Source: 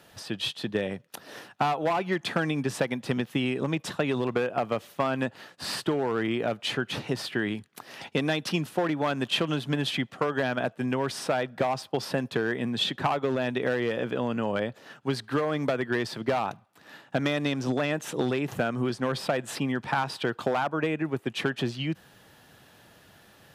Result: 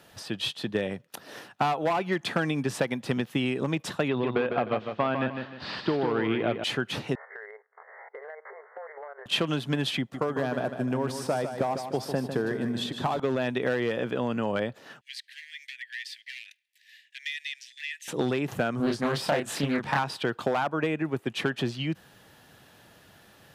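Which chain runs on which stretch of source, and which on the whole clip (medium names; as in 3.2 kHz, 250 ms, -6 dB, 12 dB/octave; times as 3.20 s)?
4.08–6.64 s: low-pass 3.9 kHz 24 dB/octave + feedback delay 153 ms, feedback 34%, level -6.5 dB
7.15–9.26 s: spectrogram pixelated in time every 50 ms + brick-wall FIR band-pass 400–2200 Hz + compression, threshold -38 dBFS
9.99–13.20 s: peaking EQ 2.6 kHz -8.5 dB 2 oct + feedback delay 151 ms, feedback 45%, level -8 dB
15.01–18.08 s: steep high-pass 1.8 kHz 96 dB/octave + treble shelf 4.7 kHz -5.5 dB
18.77–19.99 s: treble shelf 11 kHz +5 dB + doubling 28 ms -3 dB + loudspeaker Doppler distortion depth 0.44 ms
whole clip: none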